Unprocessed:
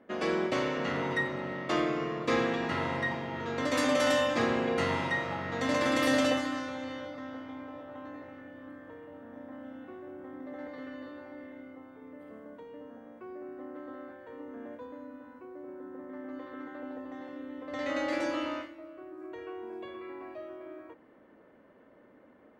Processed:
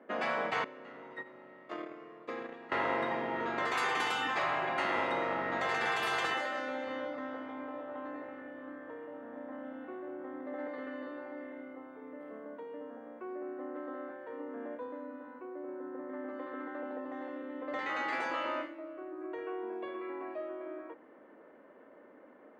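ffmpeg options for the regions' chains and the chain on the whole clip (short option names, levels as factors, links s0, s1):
-filter_complex "[0:a]asettb=1/sr,asplit=3[s0][s1][s2];[s0]atrim=end=0.644[s3];[s1]atrim=start=0.64:end=2.72,asetpts=PTS-STARTPTS,afade=t=in:d=0.004:c=qsin,afade=t=out:st=2.076:d=0.004:c=qsin,agate=range=0.112:threshold=0.0398:ratio=16:release=100:detection=peak,acompressor=threshold=0.0126:ratio=10:attack=3.2:release=140:knee=1:detection=peak[s4];[s2]atrim=start=2.716[s5];[s3][s4]acrossfade=d=0.004:c1=hsin:c2=qsin[s6];[s6][s5]acrossfade=d=0.004:c1=qsin:c2=hsin,asettb=1/sr,asplit=3[s7][s8][s9];[s7]atrim=end=6.344[s10];[s8]atrim=start=6.34:end=6.87,asetpts=PTS-STARTPTS,afade=t=in:d=0.004:c=qsin,afade=t=out:st=0.526:d=0.004:c=qsin,lowshelf=f=140:g=-10,bandreject=f=1100:w=5.2[s11];[s9]atrim=start=6.866[s12];[s10][s11]acrossfade=d=0.004:c1=hsin:c2=qsin[s13];[s13][s12]acrossfade=d=0.004:c1=qsin:c2=hsin,afftfilt=real='re*lt(hypot(re,im),0.112)':imag='im*lt(hypot(re,im),0.112)':win_size=1024:overlap=0.75,acrossover=split=240 2600:gain=0.126 1 0.251[s14][s15][s16];[s14][s15][s16]amix=inputs=3:normalize=0,bandreject=f=5700:w=16,volume=1.5"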